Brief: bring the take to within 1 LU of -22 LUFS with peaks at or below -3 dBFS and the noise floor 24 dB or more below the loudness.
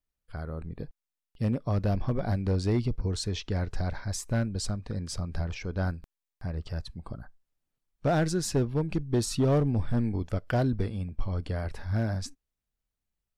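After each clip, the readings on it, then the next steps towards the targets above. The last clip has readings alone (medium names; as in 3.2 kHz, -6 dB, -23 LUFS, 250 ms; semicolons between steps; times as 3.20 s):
clipped samples 0.8%; clipping level -19.0 dBFS; loudness -30.5 LUFS; peak level -19.0 dBFS; loudness target -22.0 LUFS
-> clip repair -19 dBFS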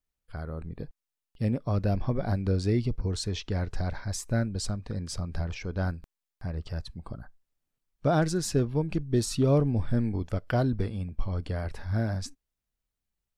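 clipped samples 0.0%; loudness -30.0 LUFS; peak level -12.0 dBFS; loudness target -22.0 LUFS
-> trim +8 dB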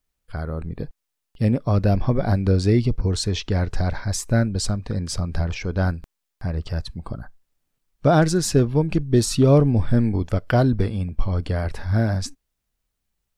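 loudness -22.0 LUFS; peak level -4.0 dBFS; noise floor -80 dBFS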